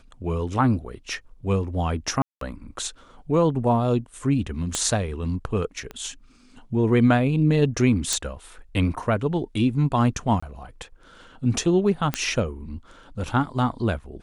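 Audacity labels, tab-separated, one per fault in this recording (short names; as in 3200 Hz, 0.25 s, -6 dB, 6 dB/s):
2.220000	2.410000	gap 0.193 s
4.750000	4.750000	pop -10 dBFS
5.910000	5.910000	pop -21 dBFS
8.130000	8.130000	pop
10.400000	10.430000	gap 25 ms
12.140000	12.140000	pop -8 dBFS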